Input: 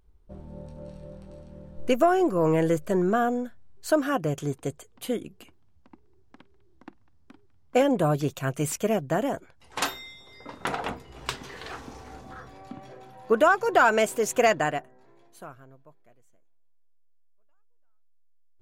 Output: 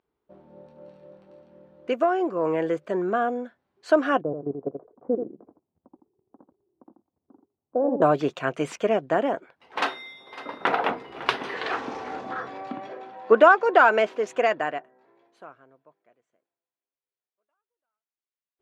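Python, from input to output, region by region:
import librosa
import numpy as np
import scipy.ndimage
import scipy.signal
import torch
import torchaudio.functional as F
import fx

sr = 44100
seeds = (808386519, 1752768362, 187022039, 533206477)

y = fx.chain(x, sr, fx.bessel_lowpass(hz=610.0, order=8),
    fx.level_steps(step_db=14),
    fx.echo_single(ms=83, db=-7.0), at=(4.21, 8.02))
y = fx.chain(y, sr, fx.echo_single(ms=554, db=-18.0),
    fx.resample_bad(factor=3, down='filtered', up='hold'), at=(9.2, 11.54))
y = fx.chain(y, sr, fx.median_filter(points=5),
    fx.highpass(hz=150.0, slope=24), at=(12.87, 14.27))
y = scipy.signal.sosfilt(scipy.signal.butter(2, 3100.0, 'lowpass', fs=sr, output='sos'), y)
y = fx.rider(y, sr, range_db=10, speed_s=2.0)
y = scipy.signal.sosfilt(scipy.signal.butter(2, 300.0, 'highpass', fs=sr, output='sos'), y)
y = y * 10.0 ** (2.0 / 20.0)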